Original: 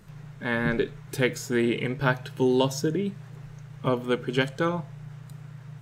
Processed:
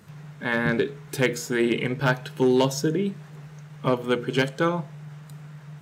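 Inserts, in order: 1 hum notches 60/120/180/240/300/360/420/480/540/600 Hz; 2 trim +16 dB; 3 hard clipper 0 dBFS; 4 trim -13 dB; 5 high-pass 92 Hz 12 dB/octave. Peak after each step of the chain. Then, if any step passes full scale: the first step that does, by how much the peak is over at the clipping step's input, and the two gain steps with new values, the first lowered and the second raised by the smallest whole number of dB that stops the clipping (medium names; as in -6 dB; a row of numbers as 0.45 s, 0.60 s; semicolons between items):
-6.5 dBFS, +9.5 dBFS, 0.0 dBFS, -13.0 dBFS, -8.5 dBFS; step 2, 9.5 dB; step 2 +6 dB, step 4 -3 dB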